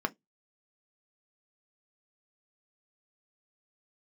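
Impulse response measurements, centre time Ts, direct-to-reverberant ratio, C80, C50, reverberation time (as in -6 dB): 3 ms, 6.5 dB, 42.0 dB, 28.5 dB, 0.15 s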